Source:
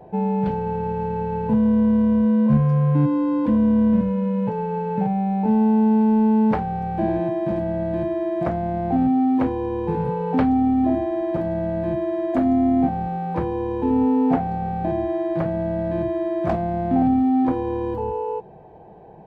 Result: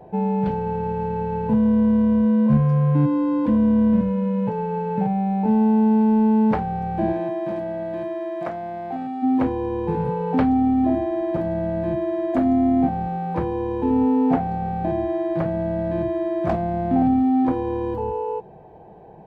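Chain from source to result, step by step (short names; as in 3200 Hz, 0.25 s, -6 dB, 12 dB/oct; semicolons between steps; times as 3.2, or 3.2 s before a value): 7.12–9.22 HPF 320 Hz -> 1100 Hz 6 dB/oct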